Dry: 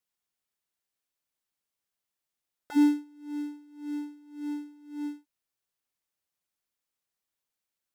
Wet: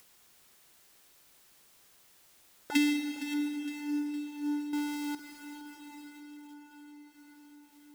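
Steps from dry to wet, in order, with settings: 4.73–5.15 s: one-bit comparator; compression 10:1, threshold -27 dBFS, peak gain reduction 10 dB; 2.75–3.34 s: resonant high shelf 1.6 kHz +13 dB, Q 3; plate-style reverb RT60 4.7 s, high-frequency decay 0.9×, pre-delay 115 ms, DRR 6.5 dB; upward compressor, threshold -45 dBFS; peaking EQ 360 Hz +2.5 dB 0.43 oct; bit-crushed delay 462 ms, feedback 55%, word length 8-bit, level -13 dB; trim +2.5 dB

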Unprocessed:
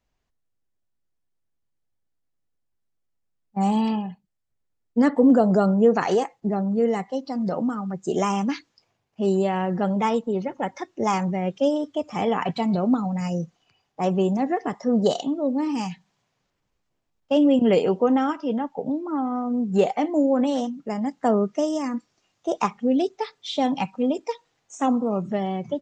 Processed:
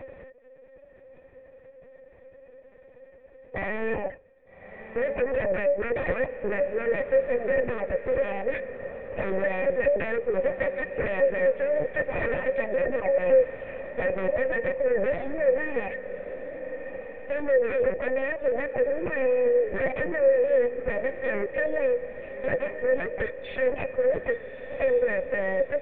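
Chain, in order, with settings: spectral levelling over time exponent 0.6; high-pass 350 Hz 24 dB/octave; reverb removal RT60 0.95 s; in parallel at -1 dB: peak limiter -14 dBFS, peak gain reduction 8 dB; on the sum: compression 1.5:1, threshold -32 dBFS, peak gain reduction 8 dB; sine folder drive 14 dB, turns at -10 dBFS; cascade formant filter e; LPC vocoder at 8 kHz pitch kept; on a send: echo that smears into a reverb 1233 ms, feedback 44%, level -11.5 dB; on the sum: trim -1.5 dB

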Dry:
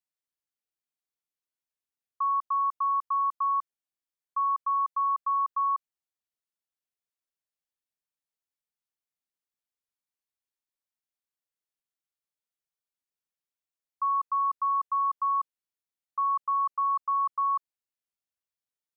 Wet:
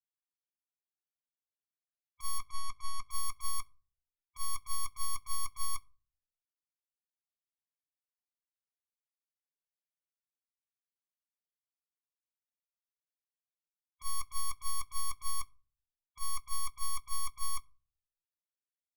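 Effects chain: tracing distortion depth 0.25 ms; tone controls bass -6 dB, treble -10 dB; loudest bins only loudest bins 16; wavefolder -35.5 dBFS; 2.38–3.02 s: distance through air 54 m; reverberation RT60 0.40 s, pre-delay 6 ms, DRR 6.5 dB; upward expansion 2.5:1, over -38 dBFS; trim +3 dB

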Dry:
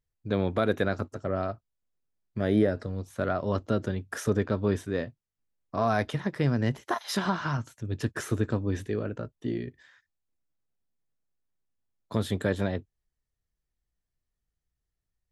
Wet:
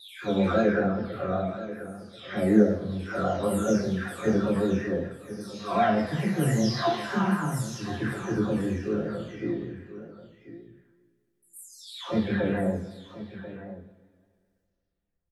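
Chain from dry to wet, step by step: delay that grows with frequency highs early, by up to 689 ms; delay 1036 ms -14 dB; two-slope reverb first 0.48 s, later 2.2 s, from -20 dB, DRR -6.5 dB; vibrato 5.2 Hz 44 cents; trim -3.5 dB

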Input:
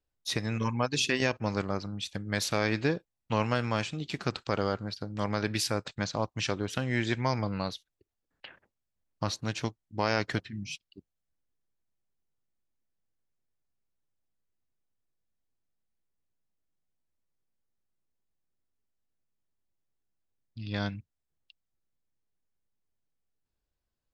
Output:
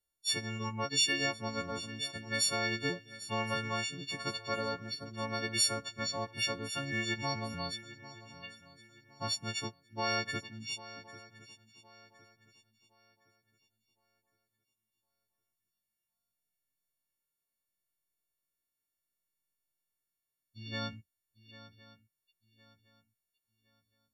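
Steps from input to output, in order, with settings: partials quantised in pitch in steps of 4 st; shuffle delay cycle 1063 ms, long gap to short 3:1, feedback 31%, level -16 dB; trim -8 dB

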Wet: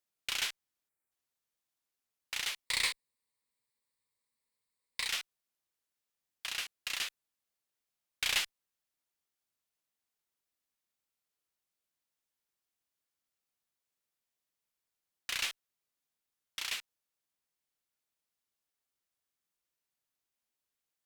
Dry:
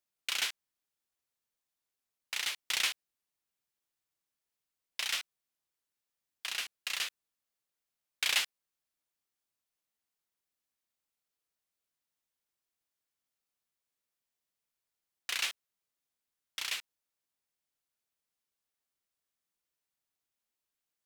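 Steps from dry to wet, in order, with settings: 0.89–1.11 s: spectral selection erased 2.5–7.1 kHz; 2.66–5.08 s: rippled EQ curve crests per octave 0.96, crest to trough 10 dB; in parallel at -3.5 dB: one-sided clip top -34 dBFS; on the sum: trim -5 dB

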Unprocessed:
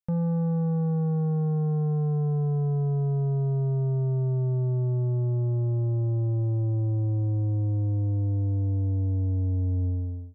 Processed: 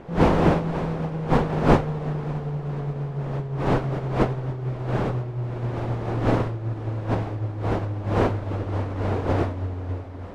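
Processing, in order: wind noise 600 Hz -25 dBFS; echo that smears into a reverb 599 ms, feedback 63%, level -12 dB; upward expansion 1.5:1, over -29 dBFS; trim +1 dB

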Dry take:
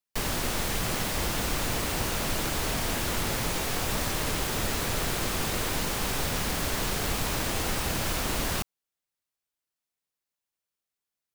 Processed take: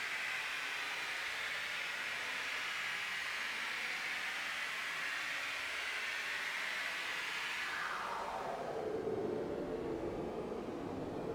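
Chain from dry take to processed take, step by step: Paulstretch 10×, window 0.10 s, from 6.11 s; band-pass sweep 2.1 kHz -> 390 Hz, 7.56–9.05 s

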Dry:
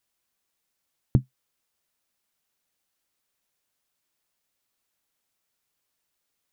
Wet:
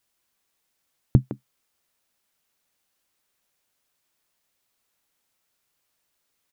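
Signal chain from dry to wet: speakerphone echo 160 ms, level -6 dB; trim +3.5 dB

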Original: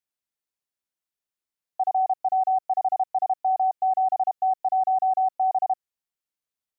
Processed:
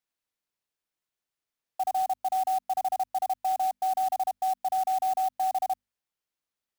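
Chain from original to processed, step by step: hum notches 50/100/150/200/250 Hz; peak limiter -24 dBFS, peak gain reduction 6 dB; sampling jitter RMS 0.027 ms; trim +1.5 dB

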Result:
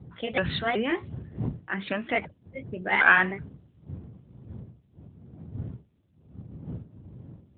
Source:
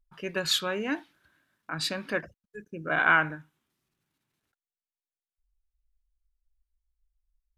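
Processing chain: sawtooth pitch modulation +5 st, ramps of 376 ms; wind noise 110 Hz -41 dBFS; trim +5 dB; AMR-NB 12.2 kbps 8 kHz

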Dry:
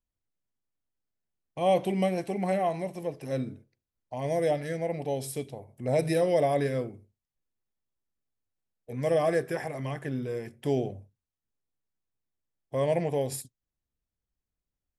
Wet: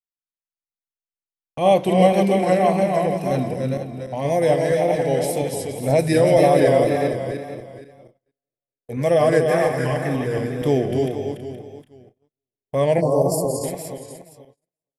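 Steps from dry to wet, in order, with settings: backward echo that repeats 236 ms, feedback 49%, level -5 dB; gate -51 dBFS, range -35 dB; delay 292 ms -5 dB; vibrato 1.9 Hz 48 cents; time-frequency box 13.01–13.64 s, 1.2–4.2 kHz -29 dB; trim +8 dB

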